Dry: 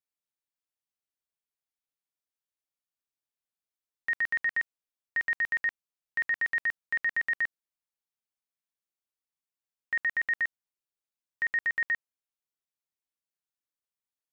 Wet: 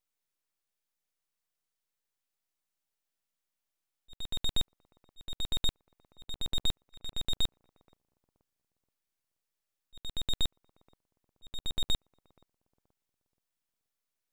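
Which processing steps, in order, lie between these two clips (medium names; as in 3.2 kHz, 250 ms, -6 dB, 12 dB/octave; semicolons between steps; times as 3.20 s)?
slow attack 757 ms; bucket-brigade echo 477 ms, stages 2048, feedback 35%, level -11 dB; full-wave rectifier; trim +6.5 dB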